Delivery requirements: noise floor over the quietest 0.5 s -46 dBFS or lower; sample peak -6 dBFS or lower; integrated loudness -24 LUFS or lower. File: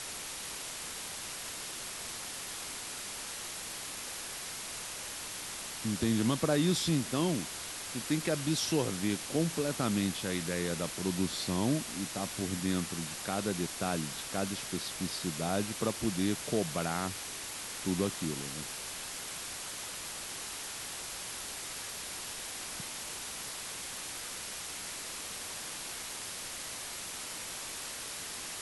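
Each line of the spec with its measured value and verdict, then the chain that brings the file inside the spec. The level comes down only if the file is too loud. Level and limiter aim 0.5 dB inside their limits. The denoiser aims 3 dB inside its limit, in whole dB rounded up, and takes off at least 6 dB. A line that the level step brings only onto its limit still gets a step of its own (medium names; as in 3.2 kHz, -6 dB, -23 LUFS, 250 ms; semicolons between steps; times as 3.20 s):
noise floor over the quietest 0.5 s -41 dBFS: fail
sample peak -16.0 dBFS: pass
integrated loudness -35.0 LUFS: pass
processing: noise reduction 8 dB, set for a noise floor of -41 dBFS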